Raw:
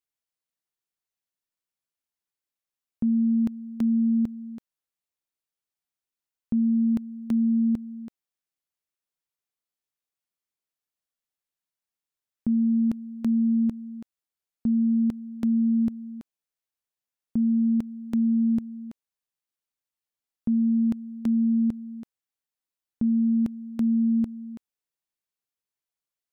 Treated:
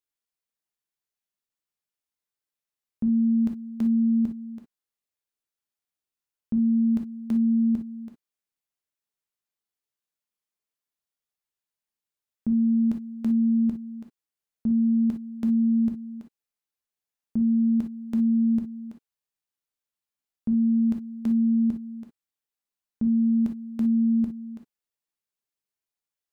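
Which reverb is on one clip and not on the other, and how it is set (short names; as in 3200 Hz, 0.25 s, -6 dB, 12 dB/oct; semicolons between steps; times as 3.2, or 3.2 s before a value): non-linear reverb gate 80 ms flat, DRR 4 dB; gain -2.5 dB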